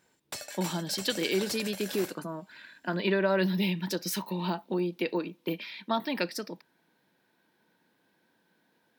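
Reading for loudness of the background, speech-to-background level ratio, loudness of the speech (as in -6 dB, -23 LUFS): -40.0 LUFS, 9.0 dB, -31.0 LUFS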